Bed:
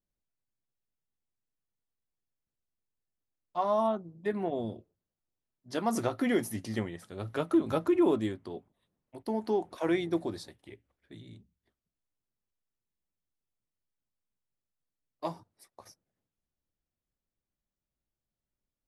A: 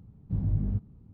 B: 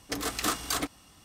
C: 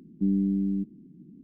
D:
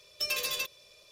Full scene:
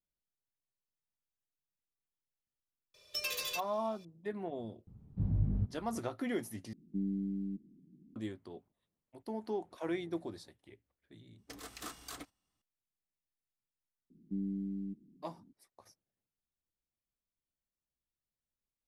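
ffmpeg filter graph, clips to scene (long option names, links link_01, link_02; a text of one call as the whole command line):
ffmpeg -i bed.wav -i cue0.wav -i cue1.wav -i cue2.wav -i cue3.wav -filter_complex "[3:a]asplit=2[link_01][link_02];[0:a]volume=-8dB[link_03];[2:a]agate=range=-13dB:threshold=-43dB:ratio=16:release=147:detection=peak[link_04];[link_03]asplit=2[link_05][link_06];[link_05]atrim=end=6.734[link_07];[link_01]atrim=end=1.43,asetpts=PTS-STARTPTS,volume=-11dB[link_08];[link_06]atrim=start=8.156[link_09];[4:a]atrim=end=1.11,asetpts=PTS-STARTPTS,volume=-5.5dB,afade=type=in:duration=0.004:curve=hsin,afade=type=out:start_time=1.106:duration=0.004:curve=hsin,adelay=2940[link_10];[1:a]atrim=end=1.13,asetpts=PTS-STARTPTS,volume=-4dB,afade=type=in:duration=0.004:curve=hsin,afade=type=out:start_time=1.126:duration=0.004:curve=hsin,adelay=4870[link_11];[link_04]atrim=end=1.24,asetpts=PTS-STARTPTS,volume=-16.5dB,afade=type=in:duration=0.004:curve=hsin,afade=type=out:start_time=1.236:duration=0.004:curve=hsin,adelay=501858S[link_12];[link_02]atrim=end=1.43,asetpts=PTS-STARTPTS,volume=-12.5dB,afade=type=in:duration=0.004:curve=hsin,afade=type=out:start_time=1.426:duration=0.004:curve=hsin,adelay=14100[link_13];[link_07][link_08]acrossfade=duration=0.004:curve1=hsin:curve2=hsin[link_14];[link_14][link_09]acrossfade=duration=0.004:curve1=hsin:curve2=hsin[link_15];[link_15][link_10][link_11][link_12][link_13]amix=inputs=5:normalize=0" out.wav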